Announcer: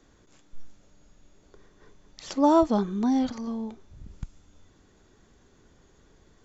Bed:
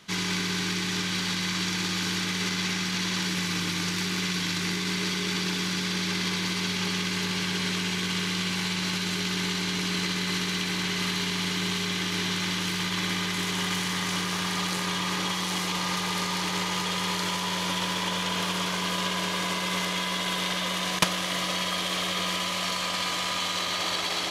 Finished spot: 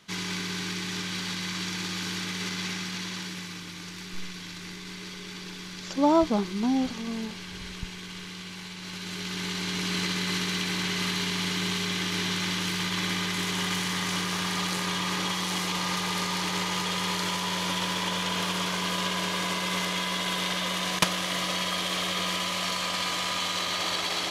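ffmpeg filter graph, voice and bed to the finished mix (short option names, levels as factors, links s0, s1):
-filter_complex "[0:a]adelay=3600,volume=0.841[s0];[1:a]volume=2.24,afade=t=out:st=2.68:d=0.95:silence=0.421697,afade=t=in:st=8.79:d=1.19:silence=0.281838[s1];[s0][s1]amix=inputs=2:normalize=0"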